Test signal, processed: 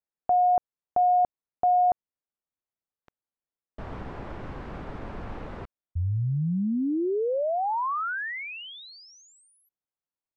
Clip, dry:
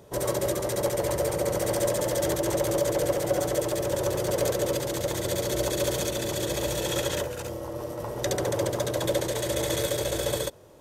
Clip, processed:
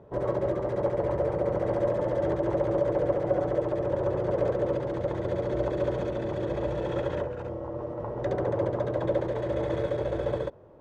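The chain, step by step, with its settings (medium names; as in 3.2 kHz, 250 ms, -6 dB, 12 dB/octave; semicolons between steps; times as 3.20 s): low-pass 1.3 kHz 12 dB/octave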